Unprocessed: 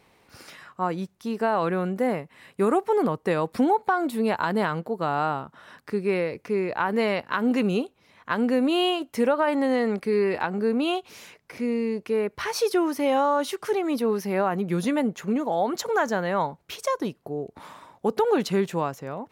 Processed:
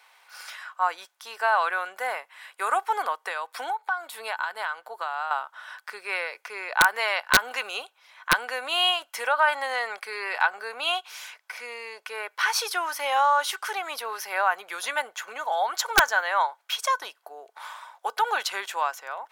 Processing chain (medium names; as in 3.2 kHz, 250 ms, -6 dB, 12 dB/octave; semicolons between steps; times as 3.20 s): high-pass 800 Hz 24 dB/octave; 3.15–5.31 s: compression 3:1, threshold -35 dBFS, peak gain reduction 11.5 dB; small resonant body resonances 1.5/3.3 kHz, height 11 dB, ringing for 70 ms; integer overflow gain 12.5 dB; trim +5 dB